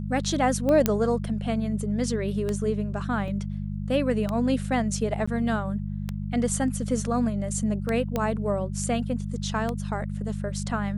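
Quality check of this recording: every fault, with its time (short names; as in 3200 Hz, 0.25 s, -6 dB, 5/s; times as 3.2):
hum 50 Hz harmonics 4 -31 dBFS
tick 33 1/3 rpm -15 dBFS
0.86 pop -6 dBFS
3.28 gap 2 ms
5.26–5.28 gap 15 ms
8.16 pop -13 dBFS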